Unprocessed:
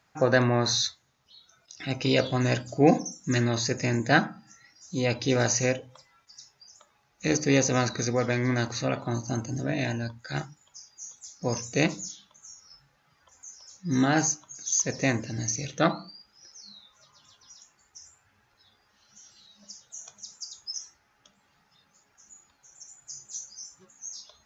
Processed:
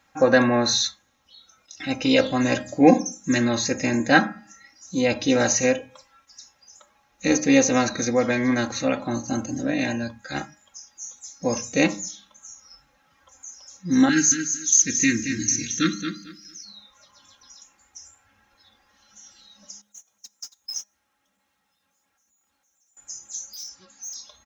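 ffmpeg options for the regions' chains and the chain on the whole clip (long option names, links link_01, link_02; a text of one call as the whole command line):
ffmpeg -i in.wav -filter_complex "[0:a]asettb=1/sr,asplit=3[link_01][link_02][link_03];[link_01]atrim=end=14.094[link_04];[link_02]atrim=start=14.09:end=16.65,asetpts=PTS-STARTPTS,afade=type=in:duration=0.004:curve=qsin,afade=type=out:start_time=2.556:duration=0.004:curve=qsin,asuperstop=centerf=750:order=8:qfactor=0.71,highshelf=frequency=5100:gain=6,aecho=1:1:224|448|672:0.398|0.0836|0.0176,atrim=end_sample=112896[link_05];[link_03]atrim=start=16.646[link_06];[link_04][link_05]acrossfade=duration=0.004:curve1=hsin:curve2=qsin[link_07];[link_07][link_06]acrossfade=duration=0.004:curve1=qsin:curve2=hsin,asettb=1/sr,asplit=3[link_08][link_09][link_10];[link_08]atrim=end=19.814[link_11];[link_09]atrim=start=19.81:end=22.97,asetpts=PTS-STARTPTS,afade=type=in:duration=0.004:curve=qsin,afade=type=out:start_time=3.156:duration=0.004:curve=qsin,aeval=exprs='val(0)+0.5*0.00794*sgn(val(0))':channel_layout=same,highpass=59,agate=range=-30dB:threshold=-37dB:ratio=16:release=100:detection=peak[link_12];[link_10]atrim=start=22.966[link_13];[link_11][link_12]acrossfade=duration=0.004:curve1=hsin:curve2=qsin[link_14];[link_14][link_13]acrossfade=duration=0.004:curve1=qsin:curve2=hsin,asettb=1/sr,asplit=3[link_15][link_16][link_17];[link_15]atrim=end=23.534[link_18];[link_16]atrim=start=23.53:end=24.14,asetpts=PTS-STARTPTS,afade=type=in:duration=0.004:curve=qsin,afade=type=out:start_time=0.606:duration=0.004:curve=qsin,lowpass=frequency=4700:width_type=q:width=12,asoftclip=type=hard:threshold=-37dB[link_19];[link_17]atrim=start=24.136[link_20];[link_18][link_19]acrossfade=duration=0.004:curve1=hsin:curve2=qsin[link_21];[link_21][link_20]acrossfade=duration=0.004:curve1=qsin:curve2=hsin,bandreject=frequency=4700:width=8.3,aecho=1:1:3.7:0.68,bandreject=frequency=206.7:width_type=h:width=4,bandreject=frequency=413.4:width_type=h:width=4,bandreject=frequency=620.1:width_type=h:width=4,bandreject=frequency=826.8:width_type=h:width=4,bandreject=frequency=1033.5:width_type=h:width=4,bandreject=frequency=1240.2:width_type=h:width=4,bandreject=frequency=1446.9:width_type=h:width=4,bandreject=frequency=1653.6:width_type=h:width=4,bandreject=frequency=1860.3:width_type=h:width=4,bandreject=frequency=2067:width_type=h:width=4,bandreject=frequency=2273.7:width_type=h:width=4,bandreject=frequency=2480.4:width_type=h:width=4,volume=3dB" out.wav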